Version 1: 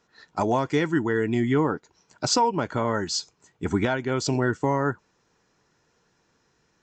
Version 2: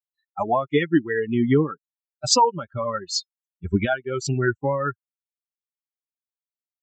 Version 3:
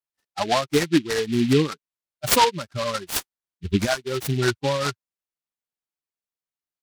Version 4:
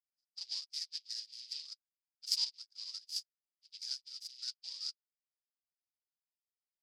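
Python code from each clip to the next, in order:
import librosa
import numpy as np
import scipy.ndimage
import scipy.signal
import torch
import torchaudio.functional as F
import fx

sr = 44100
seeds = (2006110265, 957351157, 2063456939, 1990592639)

y1 = fx.bin_expand(x, sr, power=3.0)
y1 = F.gain(torch.from_numpy(y1), 8.0).numpy()
y2 = fx.noise_mod_delay(y1, sr, seeds[0], noise_hz=2900.0, depth_ms=0.084)
y3 = fx.ladder_bandpass(y2, sr, hz=5100.0, resonance_pct=85)
y3 = F.gain(torch.from_numpy(y3), -6.5).numpy()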